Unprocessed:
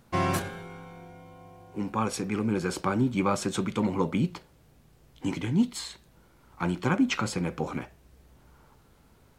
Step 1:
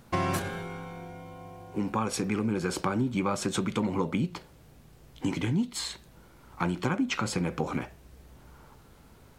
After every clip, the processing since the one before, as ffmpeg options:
ffmpeg -i in.wav -af "acompressor=threshold=-30dB:ratio=4,volume=4.5dB" out.wav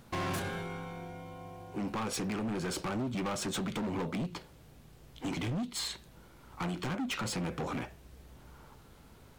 ffmpeg -i in.wav -af "equalizer=frequency=3400:width_type=o:width=0.77:gain=2,volume=30dB,asoftclip=hard,volume=-30dB,volume=-1.5dB" out.wav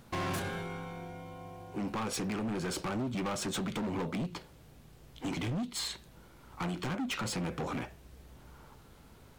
ffmpeg -i in.wav -af anull out.wav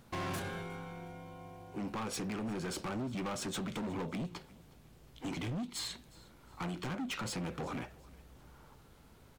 ffmpeg -i in.wav -af "aecho=1:1:361|722|1083:0.075|0.0285|0.0108,volume=-3.5dB" out.wav

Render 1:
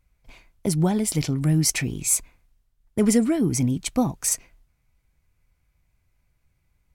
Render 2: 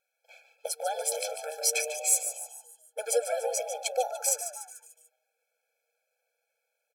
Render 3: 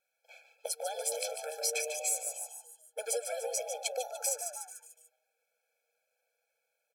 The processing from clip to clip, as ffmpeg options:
ffmpeg -i in.wav -filter_complex "[0:a]asplit=6[link_01][link_02][link_03][link_04][link_05][link_06];[link_02]adelay=146,afreqshift=150,volume=-10dB[link_07];[link_03]adelay=292,afreqshift=300,volume=-16dB[link_08];[link_04]adelay=438,afreqshift=450,volume=-22dB[link_09];[link_05]adelay=584,afreqshift=600,volume=-28.1dB[link_10];[link_06]adelay=730,afreqshift=750,volume=-34.1dB[link_11];[link_01][link_07][link_08][link_09][link_10][link_11]amix=inputs=6:normalize=0,afftfilt=real='re*eq(mod(floor(b*sr/1024/440),2),1)':imag='im*eq(mod(floor(b*sr/1024/440),2),1)':win_size=1024:overlap=0.75" out.wav
ffmpeg -i in.wav -filter_complex "[0:a]acrossover=split=570|2000[link_01][link_02][link_03];[link_01]acompressor=threshold=-35dB:ratio=4[link_04];[link_02]acompressor=threshold=-43dB:ratio=4[link_05];[link_03]acompressor=threshold=-29dB:ratio=4[link_06];[link_04][link_05][link_06]amix=inputs=3:normalize=0,volume=-1dB" out.wav

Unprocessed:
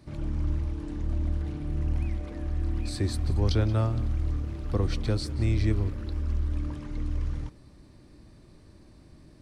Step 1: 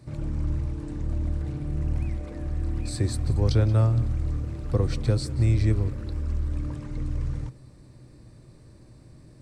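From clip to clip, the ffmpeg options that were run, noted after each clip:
ffmpeg -i in.wav -af "equalizer=frequency=125:width_type=o:width=0.33:gain=12,equalizer=frequency=500:width_type=o:width=0.33:gain=5,equalizer=frequency=3150:width_type=o:width=0.33:gain=-4,equalizer=frequency=8000:width_type=o:width=0.33:gain=7" out.wav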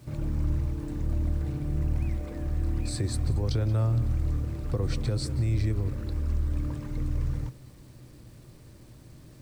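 ffmpeg -i in.wav -af "alimiter=limit=-18dB:level=0:latency=1:release=106,acrusher=bits=9:mix=0:aa=0.000001" out.wav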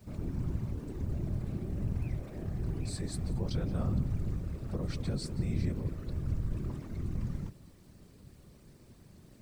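ffmpeg -i in.wav -af "afftfilt=real='hypot(re,im)*cos(2*PI*random(0))':imag='hypot(re,im)*sin(2*PI*random(1))':win_size=512:overlap=0.75" out.wav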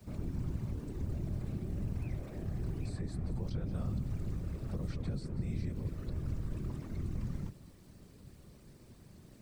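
ffmpeg -i in.wav -filter_complex "[0:a]acrossover=split=210|2300[link_01][link_02][link_03];[link_01]acompressor=threshold=-33dB:ratio=4[link_04];[link_02]acompressor=threshold=-45dB:ratio=4[link_05];[link_03]acompressor=threshold=-60dB:ratio=4[link_06];[link_04][link_05][link_06]amix=inputs=3:normalize=0" out.wav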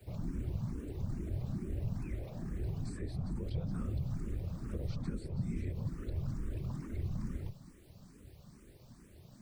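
ffmpeg -i in.wav -filter_complex "[0:a]asplit=2[link_01][link_02];[link_02]afreqshift=2.3[link_03];[link_01][link_03]amix=inputs=2:normalize=1,volume=2.5dB" out.wav

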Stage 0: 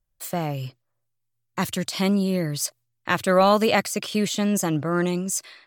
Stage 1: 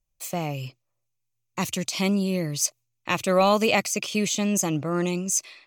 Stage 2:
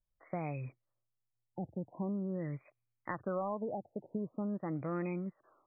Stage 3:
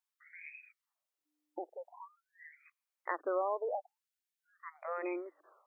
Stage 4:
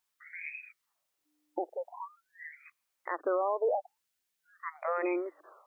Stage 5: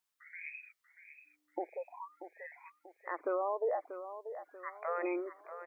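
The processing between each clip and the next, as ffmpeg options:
ffmpeg -i in.wav -af "equalizer=frequency=100:width_type=o:width=0.33:gain=-4,equalizer=frequency=1600:width_type=o:width=0.33:gain=-10,equalizer=frequency=2500:width_type=o:width=0.33:gain=8,equalizer=frequency=6300:width_type=o:width=0.33:gain=9,volume=-2dB" out.wav
ffmpeg -i in.wav -af "acompressor=threshold=-26dB:ratio=6,afftfilt=real='re*lt(b*sr/1024,880*pow(2600/880,0.5+0.5*sin(2*PI*0.45*pts/sr)))':imag='im*lt(b*sr/1024,880*pow(2600/880,0.5+0.5*sin(2*PI*0.45*pts/sr)))':win_size=1024:overlap=0.75,volume=-7dB" out.wav
ffmpeg -i in.wav -af "aeval=exprs='val(0)+0.000251*(sin(2*PI*60*n/s)+sin(2*PI*2*60*n/s)/2+sin(2*PI*3*60*n/s)/3+sin(2*PI*4*60*n/s)/4+sin(2*PI*5*60*n/s)/5)':channel_layout=same,afftfilt=real='re*gte(b*sr/1024,260*pow(1600/260,0.5+0.5*sin(2*PI*0.52*pts/sr)))':imag='im*gte(b*sr/1024,260*pow(1600/260,0.5+0.5*sin(2*PI*0.52*pts/sr)))':win_size=1024:overlap=0.75,volume=3.5dB" out.wav
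ffmpeg -i in.wav -af "alimiter=level_in=6dB:limit=-24dB:level=0:latency=1:release=125,volume=-6dB,volume=8.5dB" out.wav
ffmpeg -i in.wav -af "aecho=1:1:637|1274|1911|2548:0.282|0.116|0.0474|0.0194,volume=-4dB" out.wav

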